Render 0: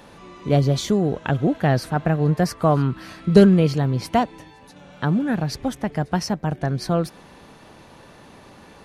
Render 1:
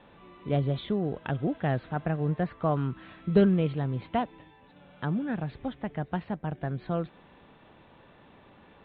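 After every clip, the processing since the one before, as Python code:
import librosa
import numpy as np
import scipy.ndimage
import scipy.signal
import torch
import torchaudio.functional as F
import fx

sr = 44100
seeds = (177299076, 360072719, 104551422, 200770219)

y = scipy.signal.sosfilt(scipy.signal.butter(16, 3800.0, 'lowpass', fs=sr, output='sos'), x)
y = F.gain(torch.from_numpy(y), -9.0).numpy()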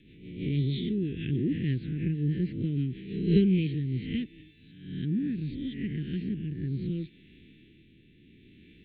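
y = fx.spec_swells(x, sr, rise_s=0.86)
y = scipy.signal.sosfilt(scipy.signal.ellip(3, 1.0, 50, [350.0, 2200.0], 'bandstop', fs=sr, output='sos'), y)
y = fx.rotary_switch(y, sr, hz=6.3, then_hz=0.7, switch_at_s=3.0)
y = F.gain(torch.from_numpy(y), 2.0).numpy()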